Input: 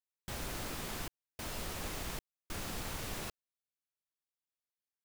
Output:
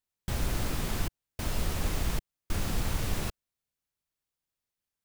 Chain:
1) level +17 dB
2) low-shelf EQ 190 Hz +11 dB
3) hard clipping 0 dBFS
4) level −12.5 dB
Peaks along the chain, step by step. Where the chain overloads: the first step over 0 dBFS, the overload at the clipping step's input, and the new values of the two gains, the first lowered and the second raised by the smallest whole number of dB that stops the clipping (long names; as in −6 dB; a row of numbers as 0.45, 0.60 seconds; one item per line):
−10.5, −4.0, −4.0, −16.5 dBFS
no step passes full scale